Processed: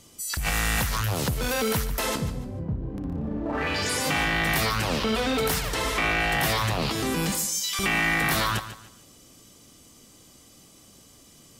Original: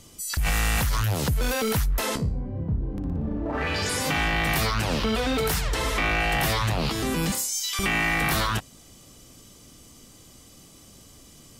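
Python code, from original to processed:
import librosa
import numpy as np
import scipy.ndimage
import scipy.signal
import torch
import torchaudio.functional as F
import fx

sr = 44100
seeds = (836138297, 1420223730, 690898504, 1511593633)

p1 = fx.low_shelf(x, sr, hz=85.0, db=-8.5)
p2 = np.sign(p1) * np.maximum(np.abs(p1) - 10.0 ** (-42.0 / 20.0), 0.0)
p3 = p1 + (p2 * 10.0 ** (-9.0 / 20.0))
p4 = fx.echo_feedback(p3, sr, ms=145, feedback_pct=30, wet_db=-12.5)
y = p4 * 10.0 ** (-2.0 / 20.0)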